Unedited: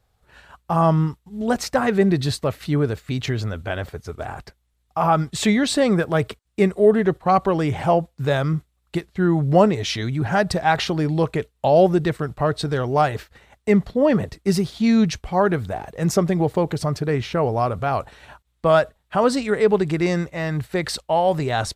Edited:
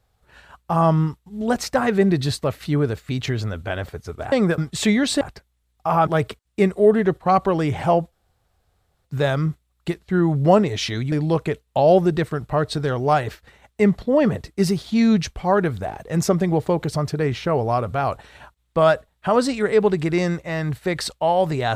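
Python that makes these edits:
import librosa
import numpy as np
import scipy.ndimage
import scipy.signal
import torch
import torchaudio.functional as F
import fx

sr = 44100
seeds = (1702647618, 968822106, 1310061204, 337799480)

y = fx.edit(x, sr, fx.swap(start_s=4.32, length_s=0.86, other_s=5.81, other_length_s=0.26),
    fx.insert_room_tone(at_s=8.12, length_s=0.93),
    fx.cut(start_s=10.19, length_s=0.81), tone=tone)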